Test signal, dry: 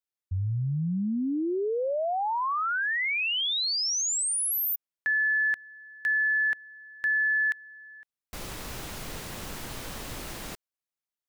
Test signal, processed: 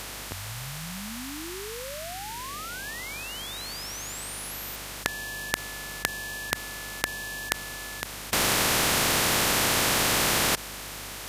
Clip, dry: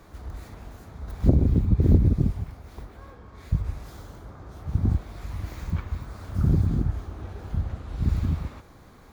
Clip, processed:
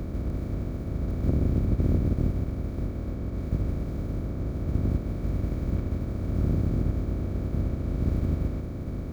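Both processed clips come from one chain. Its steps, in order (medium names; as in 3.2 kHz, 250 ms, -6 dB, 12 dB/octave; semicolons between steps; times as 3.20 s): spectral levelling over time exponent 0.2; hum 50 Hz, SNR 15 dB; upward expansion 1.5:1, over -22 dBFS; trim -9.5 dB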